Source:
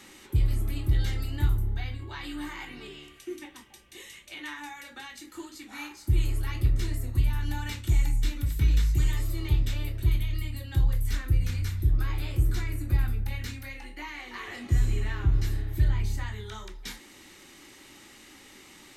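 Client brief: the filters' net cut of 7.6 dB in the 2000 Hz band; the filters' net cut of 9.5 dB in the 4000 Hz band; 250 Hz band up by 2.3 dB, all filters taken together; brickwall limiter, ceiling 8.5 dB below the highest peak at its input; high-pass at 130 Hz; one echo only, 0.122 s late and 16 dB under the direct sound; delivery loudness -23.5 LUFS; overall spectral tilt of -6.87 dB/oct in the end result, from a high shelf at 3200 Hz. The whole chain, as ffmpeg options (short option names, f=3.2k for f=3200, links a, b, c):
-af "highpass=130,equalizer=f=250:t=o:g=4,equalizer=f=2k:t=o:g=-5.5,highshelf=f=3.2k:g=-7.5,equalizer=f=4k:t=o:g=-5,alimiter=level_in=3dB:limit=-24dB:level=0:latency=1,volume=-3dB,aecho=1:1:122:0.158,volume=15.5dB"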